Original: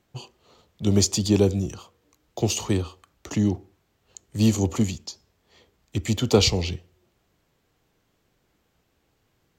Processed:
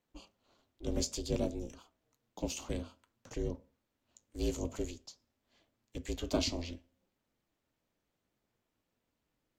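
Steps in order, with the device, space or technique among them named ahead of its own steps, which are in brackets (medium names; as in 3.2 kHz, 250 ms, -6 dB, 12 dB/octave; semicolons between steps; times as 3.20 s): alien voice (ring modulator 170 Hz; flange 0.55 Hz, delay 3.8 ms, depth 8.7 ms, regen -71%); trim -7 dB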